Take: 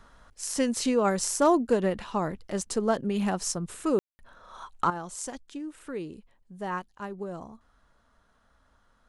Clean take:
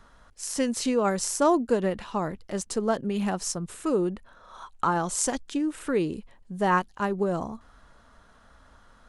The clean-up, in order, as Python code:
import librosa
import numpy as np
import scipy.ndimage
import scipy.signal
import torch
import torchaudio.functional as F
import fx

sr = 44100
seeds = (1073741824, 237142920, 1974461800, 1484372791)

y = fx.fix_declip(x, sr, threshold_db=-13.5)
y = fx.fix_ambience(y, sr, seeds[0], print_start_s=8.0, print_end_s=8.5, start_s=3.99, end_s=4.19)
y = fx.fix_level(y, sr, at_s=4.9, step_db=10.0)